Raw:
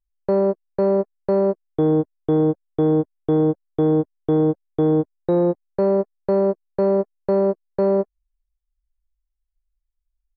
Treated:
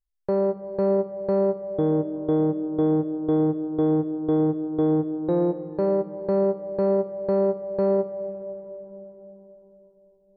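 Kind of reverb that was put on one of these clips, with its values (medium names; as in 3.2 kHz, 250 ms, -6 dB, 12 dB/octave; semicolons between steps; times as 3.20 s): algorithmic reverb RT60 4.3 s, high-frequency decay 0.35×, pre-delay 55 ms, DRR 11.5 dB; trim -4.5 dB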